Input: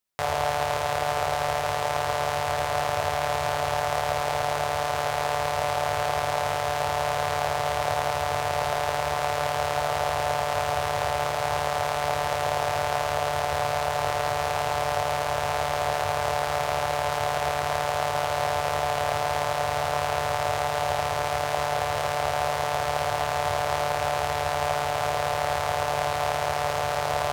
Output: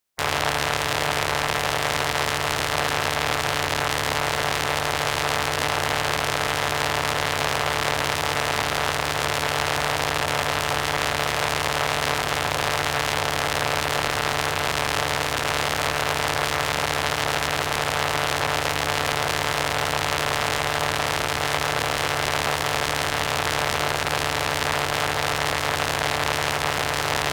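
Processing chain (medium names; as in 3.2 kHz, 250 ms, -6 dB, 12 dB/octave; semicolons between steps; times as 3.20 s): spectral peaks clipped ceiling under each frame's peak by 15 dB; reverberation RT60 1.3 s, pre-delay 32 ms, DRR 14 dB; transformer saturation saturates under 2.8 kHz; trim +5.5 dB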